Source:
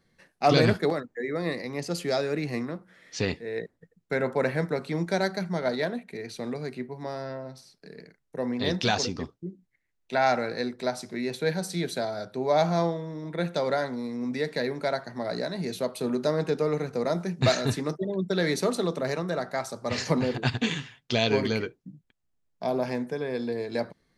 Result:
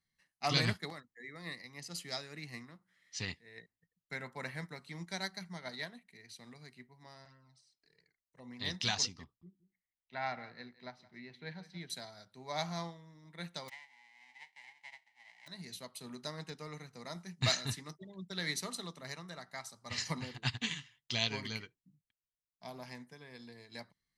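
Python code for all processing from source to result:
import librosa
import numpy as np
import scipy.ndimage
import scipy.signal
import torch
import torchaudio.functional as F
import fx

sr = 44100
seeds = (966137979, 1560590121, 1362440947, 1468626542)

y = fx.chain(x, sr, fx.env_flanger(rest_ms=4.0, full_db=-29.0),
    fx.brickwall_lowpass(high_hz=9800.0), at=(7.25, 8.51))
y = fx.chain(y, sr, fx.air_absorb(metres=290.0),
    fx.echo_single(ms=173, db=-13.5), at=(9.24, 11.9))
y = fx.envelope_flatten(y, sr, power=0.1, at=(13.68, 15.46), fade=0.02)
y = fx.double_bandpass(y, sr, hz=1300.0, octaves=1.3, at=(13.68, 15.46), fade=0.02)
y = fx.air_absorb(y, sr, metres=74.0, at=(13.68, 15.46), fade=0.02)
y = fx.tone_stack(y, sr, knobs='5-5-5')
y = y + 0.32 * np.pad(y, (int(1.0 * sr / 1000.0), 0))[:len(y)]
y = fx.upward_expand(y, sr, threshold_db=-56.0, expansion=1.5)
y = F.gain(torch.from_numpy(y), 5.5).numpy()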